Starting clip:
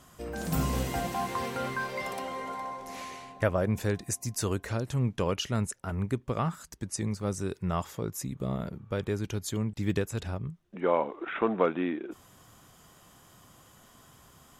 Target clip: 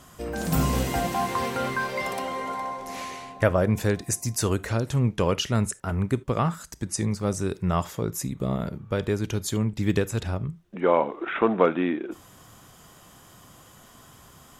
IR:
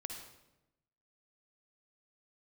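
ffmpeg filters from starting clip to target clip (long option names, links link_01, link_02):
-filter_complex "[0:a]asplit=2[link_01][link_02];[1:a]atrim=start_sample=2205,afade=type=out:start_time=0.21:duration=0.01,atrim=end_sample=9702,asetrate=83790,aresample=44100[link_03];[link_02][link_03]afir=irnorm=-1:irlink=0,volume=-5dB[link_04];[link_01][link_04]amix=inputs=2:normalize=0,volume=4dB"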